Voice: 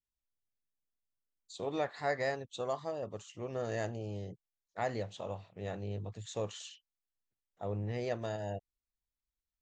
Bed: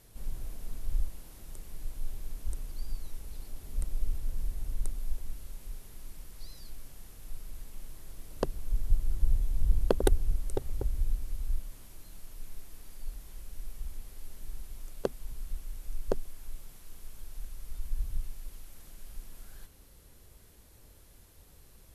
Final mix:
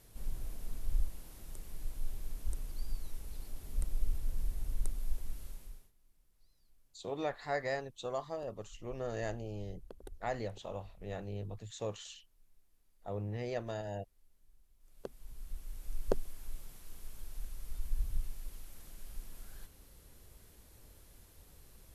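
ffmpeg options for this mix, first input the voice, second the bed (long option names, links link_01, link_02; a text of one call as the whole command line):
ffmpeg -i stem1.wav -i stem2.wav -filter_complex "[0:a]adelay=5450,volume=-2dB[link_01];[1:a]volume=22dB,afade=type=out:start_time=5.46:duration=0.46:silence=0.0668344,afade=type=in:start_time=14.79:duration=1.29:silence=0.0630957[link_02];[link_01][link_02]amix=inputs=2:normalize=0" out.wav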